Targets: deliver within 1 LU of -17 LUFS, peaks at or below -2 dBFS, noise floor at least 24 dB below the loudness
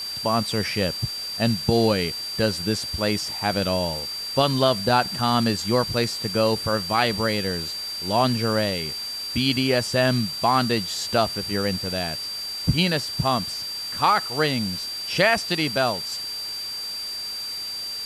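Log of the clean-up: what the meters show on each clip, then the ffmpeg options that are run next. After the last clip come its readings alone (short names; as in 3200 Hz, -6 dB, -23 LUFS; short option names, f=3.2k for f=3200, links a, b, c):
steady tone 4700 Hz; tone level -29 dBFS; noise floor -32 dBFS; noise floor target -47 dBFS; loudness -23.0 LUFS; peak -5.5 dBFS; loudness target -17.0 LUFS
-> -af "bandreject=f=4.7k:w=30"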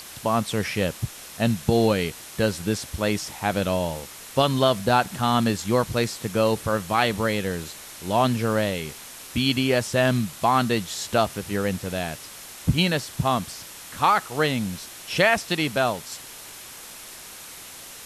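steady tone none; noise floor -42 dBFS; noise floor target -48 dBFS
-> -af "afftdn=nr=6:nf=-42"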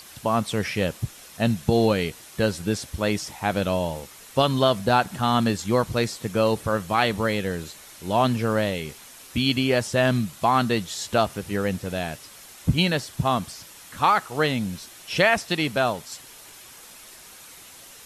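noise floor -46 dBFS; noise floor target -48 dBFS
-> -af "afftdn=nr=6:nf=-46"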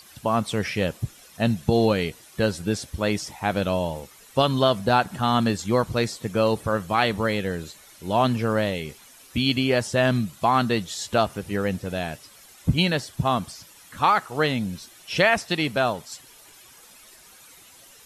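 noise floor -50 dBFS; loudness -24.0 LUFS; peak -6.0 dBFS; loudness target -17.0 LUFS
-> -af "volume=7dB,alimiter=limit=-2dB:level=0:latency=1"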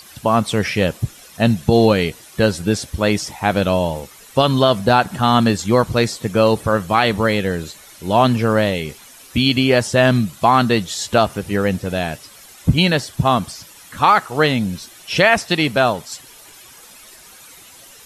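loudness -17.5 LUFS; peak -2.0 dBFS; noise floor -43 dBFS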